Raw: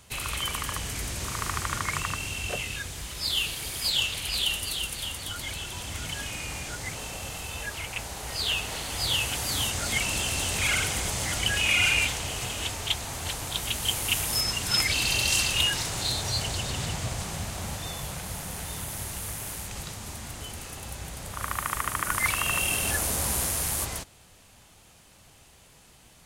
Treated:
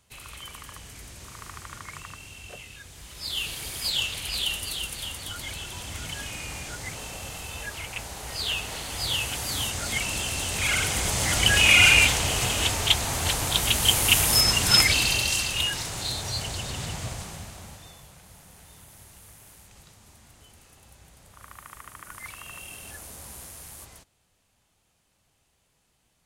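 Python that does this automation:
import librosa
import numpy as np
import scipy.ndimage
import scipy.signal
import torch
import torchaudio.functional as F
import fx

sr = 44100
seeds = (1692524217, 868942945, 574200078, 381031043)

y = fx.gain(x, sr, db=fx.line((2.78, -11.0), (3.54, -1.0), (10.48, -1.0), (11.58, 7.0), (14.75, 7.0), (15.38, -2.0), (17.08, -2.0), (18.1, -15.0)))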